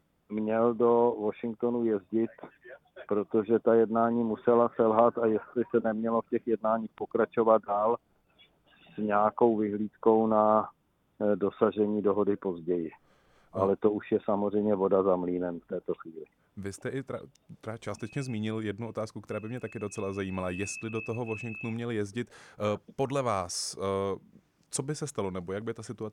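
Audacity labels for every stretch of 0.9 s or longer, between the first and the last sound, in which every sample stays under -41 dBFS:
7.960000	8.980000	silence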